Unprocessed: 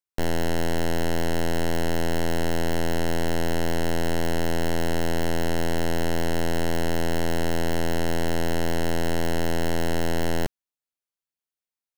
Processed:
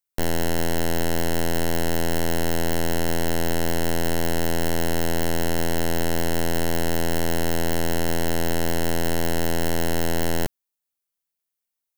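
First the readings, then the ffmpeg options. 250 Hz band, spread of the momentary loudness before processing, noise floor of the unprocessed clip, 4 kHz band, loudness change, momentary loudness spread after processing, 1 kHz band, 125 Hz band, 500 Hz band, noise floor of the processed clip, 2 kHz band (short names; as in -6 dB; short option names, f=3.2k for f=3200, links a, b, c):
+1.0 dB, 0 LU, under -85 dBFS, +2.5 dB, +2.0 dB, 0 LU, +1.0 dB, +1.0 dB, +1.0 dB, -84 dBFS, +1.5 dB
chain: -af "highshelf=f=8.5k:g=10.5,volume=1dB"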